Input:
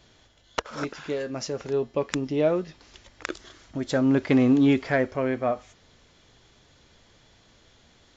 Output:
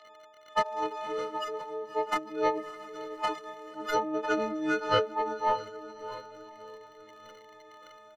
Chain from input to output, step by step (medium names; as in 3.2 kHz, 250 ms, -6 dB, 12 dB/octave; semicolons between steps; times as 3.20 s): partials quantised in pitch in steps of 6 st; high-pass 920 Hz 12 dB/octave; doubling 19 ms -2 dB; crackle 40 per s -46 dBFS; overdrive pedal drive 9 dB, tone 1.3 kHz, clips at -10 dBFS; echo that smears into a reverb 588 ms, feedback 48%, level -12 dB; formant shift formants -3 st